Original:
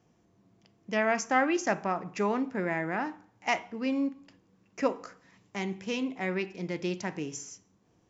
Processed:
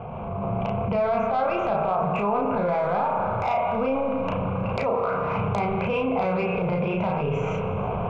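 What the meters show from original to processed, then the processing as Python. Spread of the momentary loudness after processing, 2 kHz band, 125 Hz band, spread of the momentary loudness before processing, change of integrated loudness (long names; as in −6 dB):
3 LU, −0.5 dB, +14.0 dB, 13 LU, +6.0 dB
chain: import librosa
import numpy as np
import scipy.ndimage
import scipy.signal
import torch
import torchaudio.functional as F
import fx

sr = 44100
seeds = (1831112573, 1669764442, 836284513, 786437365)

p1 = fx.recorder_agc(x, sr, target_db=-16.5, rise_db_per_s=70.0, max_gain_db=30)
p2 = scipy.signal.sosfilt(scipy.signal.ellip(4, 1.0, 50, 2500.0, 'lowpass', fs=sr, output='sos'), p1)
p3 = fx.hum_notches(p2, sr, base_hz=60, count=5)
p4 = fx.cheby_harmonics(p3, sr, harmonics=(5,), levels_db=(-17,), full_scale_db=-4.5)
p5 = fx.transient(p4, sr, attack_db=-11, sustain_db=6)
p6 = fx.fixed_phaser(p5, sr, hz=760.0, stages=4)
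p7 = fx.doubler(p6, sr, ms=34.0, db=-2)
p8 = p7 + fx.echo_single(p7, sr, ms=321, db=-23.5, dry=0)
p9 = fx.rev_spring(p8, sr, rt60_s=2.9, pass_ms=(32,), chirp_ms=75, drr_db=7.0)
p10 = fx.env_flatten(p9, sr, amount_pct=70)
y = p10 * 10.0 ** (-3.5 / 20.0)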